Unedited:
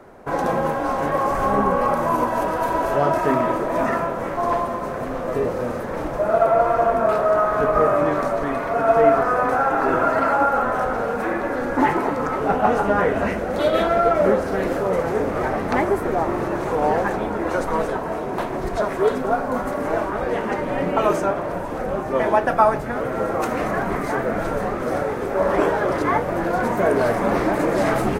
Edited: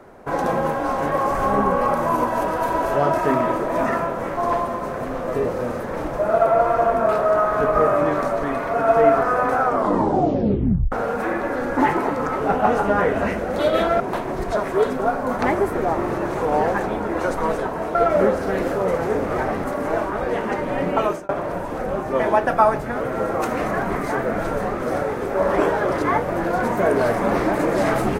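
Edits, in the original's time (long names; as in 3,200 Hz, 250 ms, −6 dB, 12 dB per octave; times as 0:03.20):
0:09.57: tape stop 1.35 s
0:14.00–0:15.69: swap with 0:18.25–0:19.64
0:20.99–0:21.29: fade out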